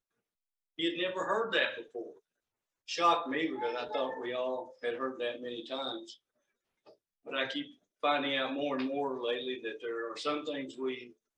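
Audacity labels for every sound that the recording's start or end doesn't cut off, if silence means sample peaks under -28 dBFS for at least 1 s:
2.910000	5.920000	sound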